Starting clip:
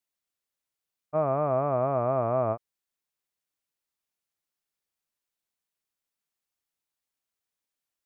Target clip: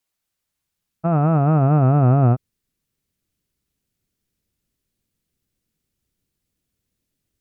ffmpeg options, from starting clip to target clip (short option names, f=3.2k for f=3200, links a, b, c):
-af "alimiter=limit=-19dB:level=0:latency=1:release=31,asubboost=boost=11.5:cutoff=240,asetrate=48000,aresample=44100,volume=8dB"